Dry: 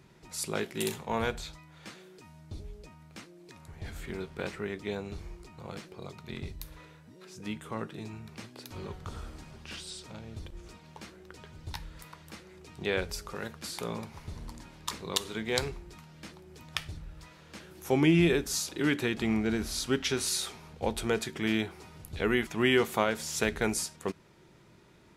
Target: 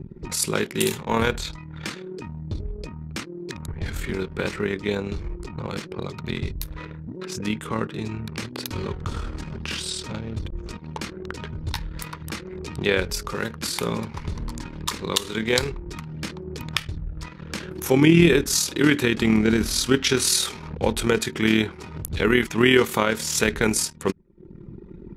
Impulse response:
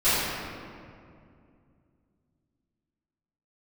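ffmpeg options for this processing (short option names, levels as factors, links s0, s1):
-filter_complex "[0:a]asplit=2[s0][s1];[s1]alimiter=limit=0.126:level=0:latency=1:release=352,volume=1.19[s2];[s0][s2]amix=inputs=2:normalize=0,equalizer=f=700:w=3.7:g=-8.5,anlmdn=0.0631,tremolo=f=39:d=0.519,acompressor=mode=upward:threshold=0.0316:ratio=2.5,volume=2"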